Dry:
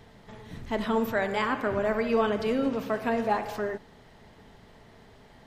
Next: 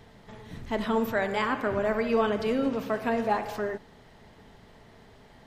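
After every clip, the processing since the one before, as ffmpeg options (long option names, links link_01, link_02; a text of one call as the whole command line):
ffmpeg -i in.wav -af anull out.wav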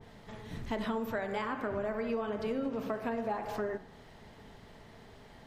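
ffmpeg -i in.wav -af "bandreject=frequency=62.49:width_type=h:width=4,bandreject=frequency=124.98:width_type=h:width=4,bandreject=frequency=187.47:width_type=h:width=4,bandreject=frequency=249.96:width_type=h:width=4,bandreject=frequency=312.45:width_type=h:width=4,bandreject=frequency=374.94:width_type=h:width=4,bandreject=frequency=437.43:width_type=h:width=4,bandreject=frequency=499.92:width_type=h:width=4,bandreject=frequency=562.41:width_type=h:width=4,bandreject=frequency=624.9:width_type=h:width=4,bandreject=frequency=687.39:width_type=h:width=4,bandreject=frequency=749.88:width_type=h:width=4,bandreject=frequency=812.37:width_type=h:width=4,bandreject=frequency=874.86:width_type=h:width=4,bandreject=frequency=937.35:width_type=h:width=4,bandreject=frequency=999.84:width_type=h:width=4,bandreject=frequency=1062.33:width_type=h:width=4,bandreject=frequency=1124.82:width_type=h:width=4,bandreject=frequency=1187.31:width_type=h:width=4,bandreject=frequency=1249.8:width_type=h:width=4,bandreject=frequency=1312.29:width_type=h:width=4,bandreject=frequency=1374.78:width_type=h:width=4,bandreject=frequency=1437.27:width_type=h:width=4,bandreject=frequency=1499.76:width_type=h:width=4,bandreject=frequency=1562.25:width_type=h:width=4,bandreject=frequency=1624.74:width_type=h:width=4,bandreject=frequency=1687.23:width_type=h:width=4,bandreject=frequency=1749.72:width_type=h:width=4,bandreject=frequency=1812.21:width_type=h:width=4,bandreject=frequency=1874.7:width_type=h:width=4,bandreject=frequency=1937.19:width_type=h:width=4,bandreject=frequency=1999.68:width_type=h:width=4,bandreject=frequency=2062.17:width_type=h:width=4,acompressor=threshold=-30dB:ratio=10,adynamicequalizer=threshold=0.00282:dfrequency=1800:dqfactor=0.7:tfrequency=1800:tqfactor=0.7:attack=5:release=100:ratio=0.375:range=2.5:mode=cutabove:tftype=highshelf" out.wav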